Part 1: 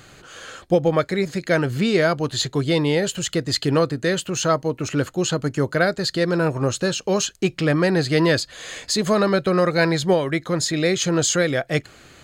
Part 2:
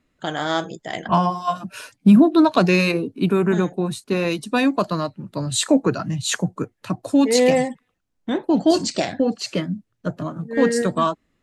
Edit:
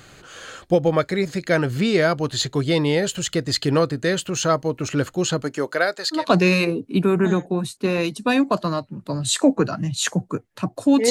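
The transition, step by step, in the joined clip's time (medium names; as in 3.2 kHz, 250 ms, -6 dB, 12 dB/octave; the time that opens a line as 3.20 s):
part 1
5.42–6.27 s: high-pass 220 Hz -> 1 kHz
6.19 s: go over to part 2 from 2.46 s, crossfade 0.16 s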